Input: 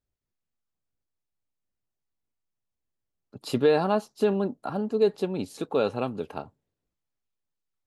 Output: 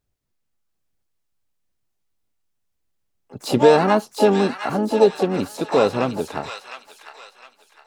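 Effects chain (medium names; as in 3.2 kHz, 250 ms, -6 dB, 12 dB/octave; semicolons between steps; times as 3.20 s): harmony voices +4 st -15 dB, +7 st -12 dB, +12 st -11 dB; feedback echo behind a high-pass 709 ms, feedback 34%, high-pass 1.6 kHz, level -4 dB; trim +7 dB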